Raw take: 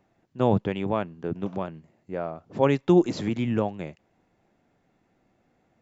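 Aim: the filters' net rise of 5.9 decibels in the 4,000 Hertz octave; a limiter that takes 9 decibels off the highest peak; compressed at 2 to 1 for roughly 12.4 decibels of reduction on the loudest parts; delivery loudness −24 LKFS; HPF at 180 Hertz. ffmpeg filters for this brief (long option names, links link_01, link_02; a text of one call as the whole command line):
ffmpeg -i in.wav -af "highpass=180,equalizer=frequency=4000:width_type=o:gain=7.5,acompressor=threshold=-38dB:ratio=2,volume=16.5dB,alimiter=limit=-12dB:level=0:latency=1" out.wav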